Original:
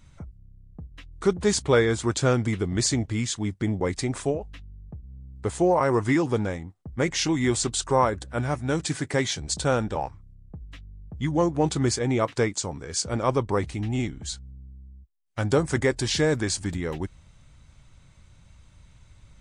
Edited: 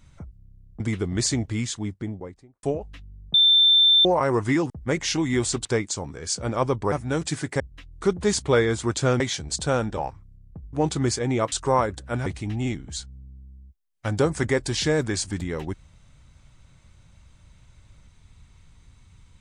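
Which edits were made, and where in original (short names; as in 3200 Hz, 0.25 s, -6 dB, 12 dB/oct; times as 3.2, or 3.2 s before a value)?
0.8–2.4 move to 9.18
3.16–4.23 studio fade out
4.94–5.65 bleep 3560 Hz -13 dBFS
6.3–6.81 cut
7.76–8.5 swap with 12.32–13.59
10.71–11.53 cut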